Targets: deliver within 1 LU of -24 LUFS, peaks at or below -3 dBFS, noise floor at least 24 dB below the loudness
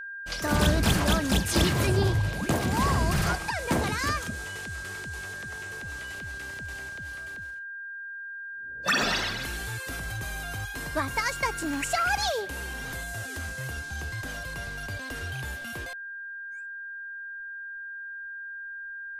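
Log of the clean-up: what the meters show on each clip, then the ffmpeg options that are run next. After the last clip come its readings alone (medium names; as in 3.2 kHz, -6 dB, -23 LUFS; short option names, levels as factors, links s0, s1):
steady tone 1.6 kHz; tone level -36 dBFS; loudness -30.0 LUFS; peak level -11.5 dBFS; loudness target -24.0 LUFS
-> -af "bandreject=f=1600:w=30"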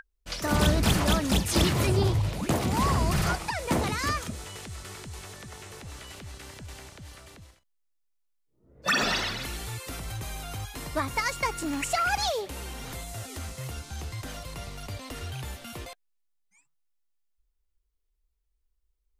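steady tone not found; loudness -28.5 LUFS; peak level -12.0 dBFS; loudness target -24.0 LUFS
-> -af "volume=1.68"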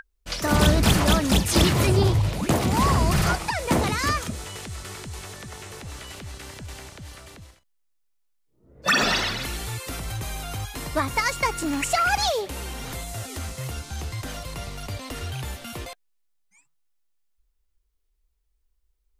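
loudness -24.0 LUFS; peak level -7.5 dBFS; noise floor -70 dBFS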